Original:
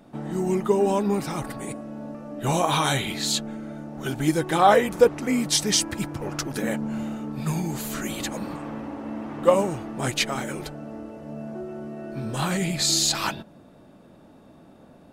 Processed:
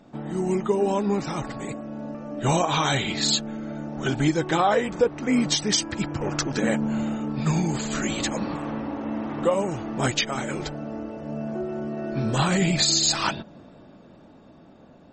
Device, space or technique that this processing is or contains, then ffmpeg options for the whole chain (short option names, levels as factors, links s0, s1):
low-bitrate web radio: -filter_complex "[0:a]asettb=1/sr,asplit=3[s0][s1][s2];[s0]atrim=end=4.904[s3];[s1]atrim=start=4.9:end=5.73,asetpts=PTS-STARTPTS,afade=t=in:d=0.004:c=qsin,afade=t=out:st=0.826:d=0.004:c=qsin,highshelf=f=5300:g=-5[s4];[s2]atrim=start=5.726[s5];[s3][s4]acrossfade=d=0.004:c1=hsin:c2=qsin[s6];[s6][s5]acrossfade=d=0.004:c1=qsin:c2=hsin,dynaudnorm=f=270:g=17:m=3.55,alimiter=limit=0.299:level=0:latency=1:release=443" -ar 48000 -c:a libmp3lame -b:a 32k